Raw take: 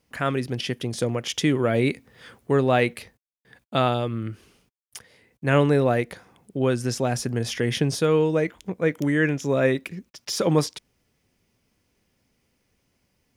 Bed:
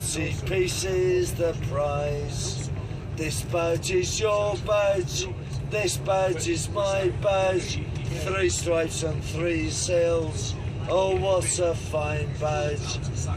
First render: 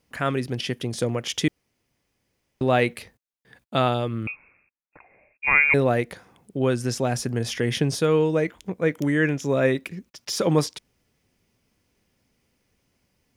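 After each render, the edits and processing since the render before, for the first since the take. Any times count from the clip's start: 1.48–2.61 room tone; 4.27–5.74 inverted band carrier 2600 Hz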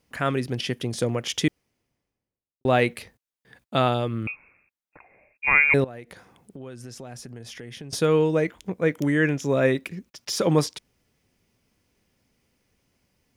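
1.47–2.65 studio fade out; 5.84–7.93 compressor 4:1, threshold -39 dBFS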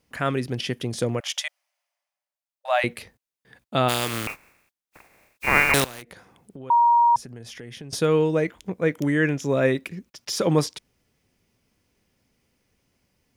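1.2–2.84 brick-wall FIR high-pass 550 Hz; 3.88–6.01 spectral contrast lowered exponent 0.36; 6.7–7.16 bleep 945 Hz -13.5 dBFS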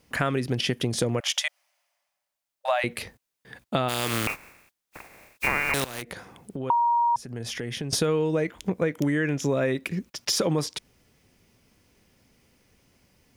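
in parallel at +2 dB: limiter -13.5 dBFS, peak gain reduction 11 dB; on the sum: compressor 6:1, threshold -22 dBFS, peak gain reduction 12.5 dB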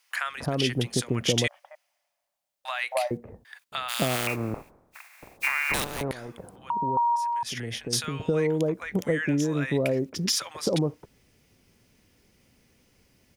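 bands offset in time highs, lows 0.27 s, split 960 Hz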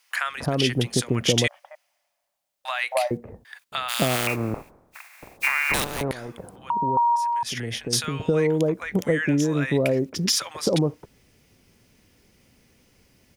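gain +3.5 dB

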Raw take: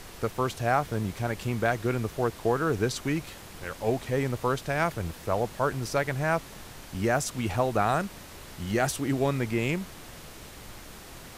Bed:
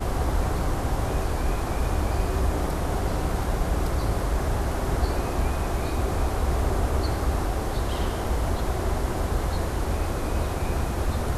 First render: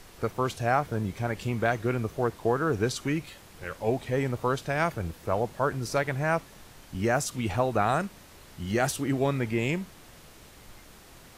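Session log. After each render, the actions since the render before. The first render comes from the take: noise print and reduce 6 dB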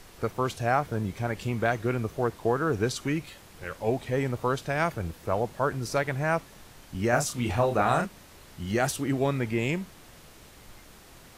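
7.09–8.06 doubler 33 ms -4.5 dB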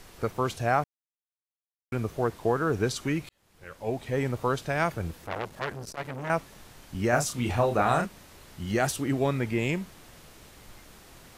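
0.84–1.92 mute; 3.29–4.24 fade in; 5.24–6.3 core saturation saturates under 2400 Hz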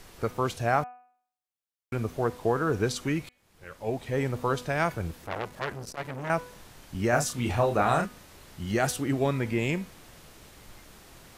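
de-hum 247.4 Hz, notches 12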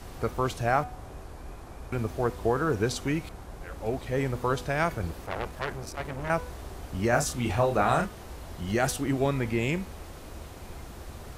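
add bed -17 dB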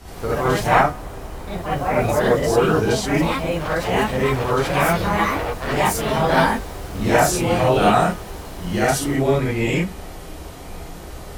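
non-linear reverb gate 0.1 s rising, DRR -7 dB; echoes that change speed 0.132 s, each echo +4 st, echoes 2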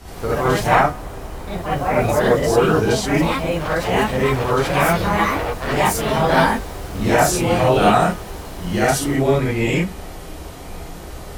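gain +1.5 dB; limiter -3 dBFS, peak gain reduction 2.5 dB

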